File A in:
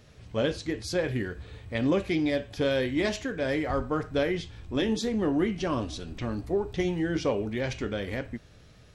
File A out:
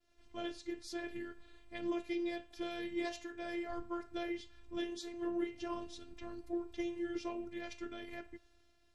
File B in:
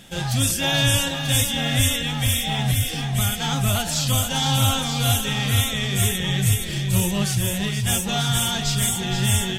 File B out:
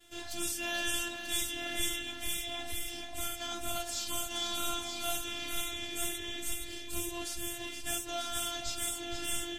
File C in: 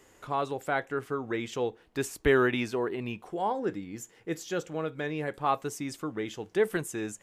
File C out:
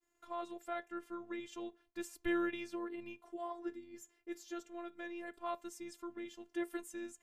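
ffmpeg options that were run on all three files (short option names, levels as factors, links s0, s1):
-af "afftfilt=real='hypot(re,im)*cos(PI*b)':imag='0':win_size=512:overlap=0.75,agate=range=0.0224:threshold=0.002:ratio=3:detection=peak,volume=0.355"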